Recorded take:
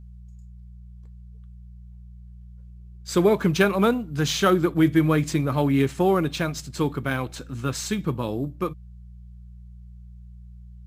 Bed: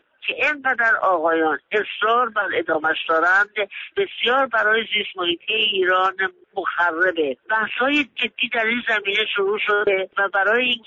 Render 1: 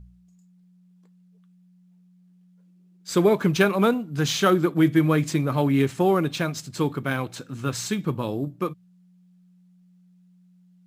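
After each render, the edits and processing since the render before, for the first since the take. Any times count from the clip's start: de-hum 60 Hz, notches 2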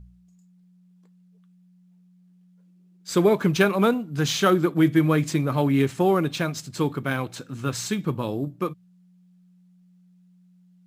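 no audible change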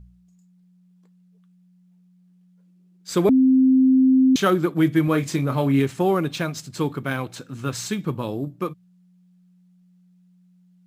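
3.29–4.36 s: bleep 261 Hz -12 dBFS; 5.05–5.80 s: doubling 29 ms -9 dB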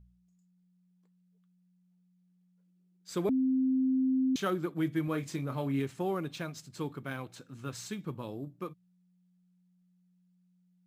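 trim -12.5 dB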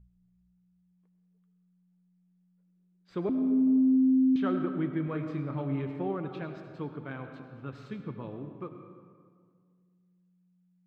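distance through air 400 m; algorithmic reverb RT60 2 s, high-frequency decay 0.55×, pre-delay 50 ms, DRR 6.5 dB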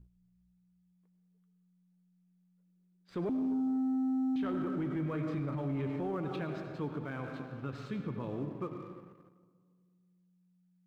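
waveshaping leveller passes 1; peak limiter -28.5 dBFS, peak gain reduction 10 dB

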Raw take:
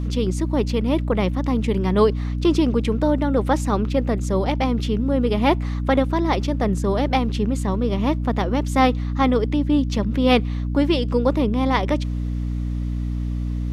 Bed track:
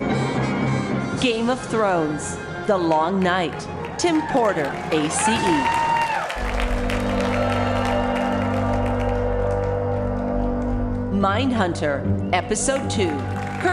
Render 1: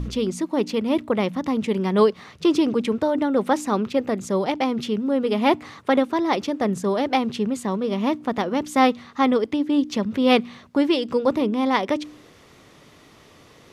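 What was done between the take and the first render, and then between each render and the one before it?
de-hum 60 Hz, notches 5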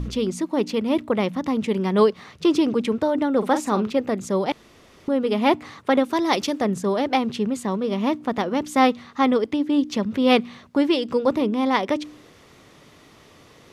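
3.38–3.94 s: doubling 42 ms -9 dB; 4.52–5.08 s: room tone; 6.04–6.60 s: treble shelf 4.8 kHz -> 2.7 kHz +11 dB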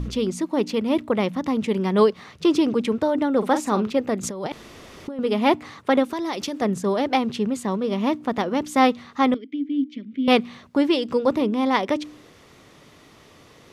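4.23–5.19 s: compressor with a negative ratio -30 dBFS; 6.04–6.62 s: compression, threshold -24 dBFS; 9.34–10.28 s: vowel filter i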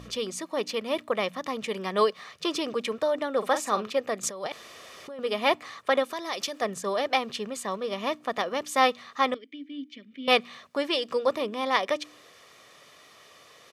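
high-pass 890 Hz 6 dB/octave; comb 1.7 ms, depth 39%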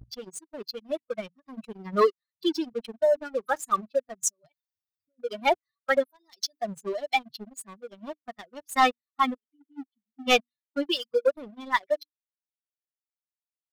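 expander on every frequency bin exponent 3; waveshaping leveller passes 2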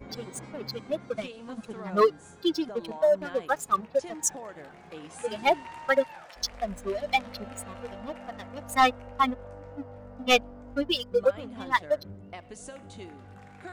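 add bed track -22.5 dB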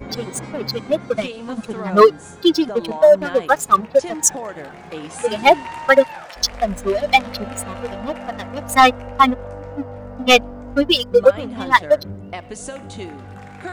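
trim +11.5 dB; peak limiter -1 dBFS, peak gain reduction 2.5 dB

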